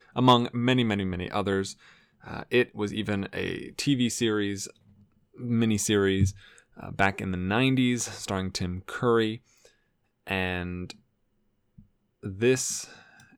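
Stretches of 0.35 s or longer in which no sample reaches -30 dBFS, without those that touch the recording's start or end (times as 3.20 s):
1.71–2.28 s
4.66–5.44 s
6.30–6.83 s
9.35–10.27 s
10.91–12.25 s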